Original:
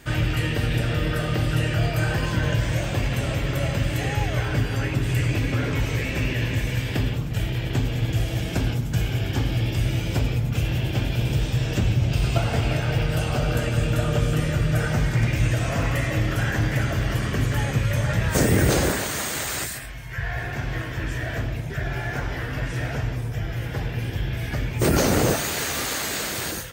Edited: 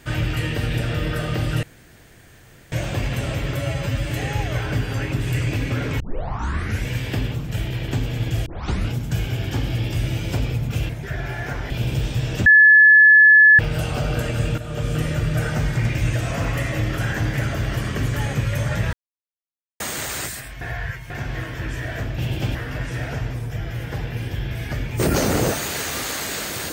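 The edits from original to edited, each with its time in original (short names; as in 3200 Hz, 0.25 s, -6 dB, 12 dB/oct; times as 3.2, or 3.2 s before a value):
1.63–2.72 room tone
3.56–3.92 stretch 1.5×
5.82 tape start 0.87 s
8.28 tape start 0.44 s
10.71–11.08 swap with 21.56–22.37
11.84–12.97 bleep 1720 Hz -7 dBFS
13.96–14.36 fade in, from -12.5 dB
18.31–19.18 mute
19.99–20.48 reverse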